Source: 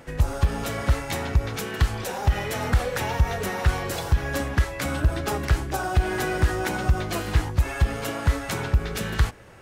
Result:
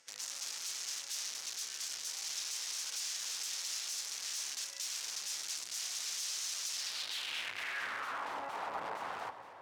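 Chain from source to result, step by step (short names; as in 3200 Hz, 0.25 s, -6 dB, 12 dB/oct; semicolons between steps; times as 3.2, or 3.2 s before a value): wrapped overs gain 26 dB; echo with dull and thin repeats by turns 0.117 s, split 1400 Hz, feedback 79%, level -12 dB; band-pass sweep 5900 Hz -> 910 Hz, 6.73–8.37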